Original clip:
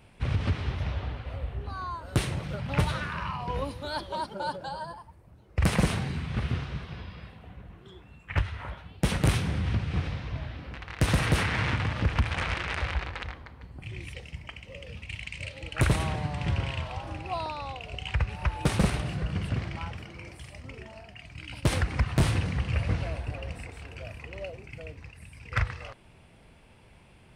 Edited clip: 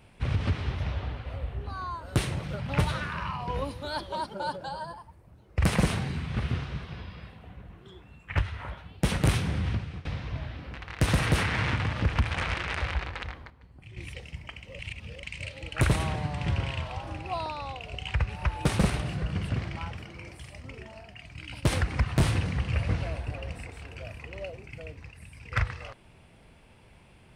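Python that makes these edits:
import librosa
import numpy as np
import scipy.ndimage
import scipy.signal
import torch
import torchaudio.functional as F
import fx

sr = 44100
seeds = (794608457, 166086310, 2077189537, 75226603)

y = fx.edit(x, sr, fx.fade_out_to(start_s=9.66, length_s=0.39, floor_db=-20.0),
    fx.clip_gain(start_s=13.5, length_s=0.47, db=-8.0),
    fx.reverse_span(start_s=14.79, length_s=0.44), tone=tone)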